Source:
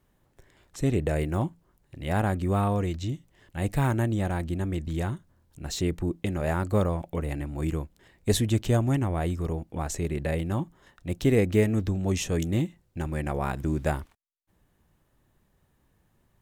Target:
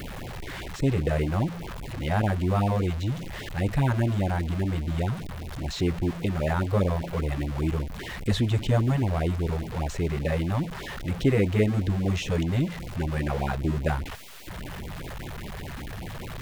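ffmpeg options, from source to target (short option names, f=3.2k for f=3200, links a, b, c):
-filter_complex "[0:a]aeval=exprs='val(0)+0.5*0.0355*sgn(val(0))':c=same,acrossover=split=4300[a][b];[b]acompressor=threshold=-48dB:ratio=4:attack=1:release=60[c];[a][c]amix=inputs=2:normalize=0,afftfilt=real='re*(1-between(b*sr/1024,240*pow(1500/240,0.5+0.5*sin(2*PI*5*pts/sr))/1.41,240*pow(1500/240,0.5+0.5*sin(2*PI*5*pts/sr))*1.41))':imag='im*(1-between(b*sr/1024,240*pow(1500/240,0.5+0.5*sin(2*PI*5*pts/sr))/1.41,240*pow(1500/240,0.5+0.5*sin(2*PI*5*pts/sr))*1.41))':win_size=1024:overlap=0.75"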